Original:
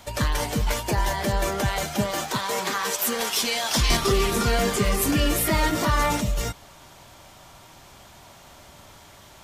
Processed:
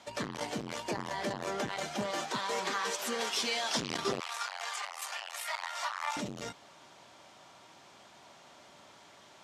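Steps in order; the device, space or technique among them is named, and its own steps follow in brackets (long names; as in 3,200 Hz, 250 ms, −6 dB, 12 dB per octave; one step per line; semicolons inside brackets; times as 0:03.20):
public-address speaker with an overloaded transformer (saturating transformer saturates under 570 Hz; band-pass filter 210–6,700 Hz)
0:04.20–0:06.17: Butterworth high-pass 750 Hz 36 dB per octave
level −6.5 dB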